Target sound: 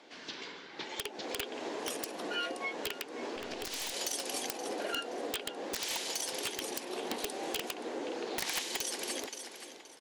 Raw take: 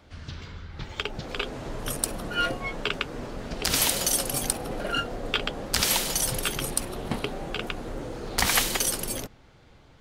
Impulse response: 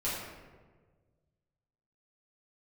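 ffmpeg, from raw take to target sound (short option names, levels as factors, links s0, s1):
-filter_complex "[0:a]highpass=f=300:w=0.5412,highpass=f=300:w=1.3066,equalizer=f=580:t=q:w=4:g=-4,equalizer=f=1300:t=q:w=4:g=-8,equalizer=f=8800:t=q:w=4:g=-7,lowpass=f=9600:w=0.5412,lowpass=f=9600:w=1.3066,aecho=1:1:524|1048:0.133|0.032,acompressor=threshold=0.0141:ratio=4,asettb=1/sr,asplit=3[s0][s1][s2];[s0]atrim=end=7.184[s3];[s1]atrim=start=7.18:end=7.74,asetpts=PTS-STARTPTS,afade=t=in:d=0.004:c=qsin,afade=t=out:st=0.556:d=0.004:c=qsin,highshelf=f=3800:g=8.5[s4];[s2]atrim=start=7.736[s5];[s3][s4]acrossfade=d=0.004:c1=hsin:c2=qsin[s6];[s6][s5]acrossfade=d=0.004:c1=qsin:c2=hsin,aeval=exprs='(mod(22.4*val(0)+1,2)-1)/22.4':c=same,asettb=1/sr,asplit=3[s7][s8][s9];[s7]atrim=end=3.364[s10];[s8]atrim=start=3.36:end=3.94,asetpts=PTS-STARTPTS,afade=t=in:d=0.004:c=qsin,afade=t=out:st=0.576:d=0.004:c=qsin,aeval=exprs='(tanh(44.7*val(0)+0.5)-tanh(0.5))/44.7':c=same[s11];[s9]atrim=start=3.936[s12];[s10][s11]acrossfade=d=0.004:c1=hsin:c2=qsin[s13];[s13][s12]acrossfade=d=0.004:c1=qsin:c2=hsin,volume=1.41"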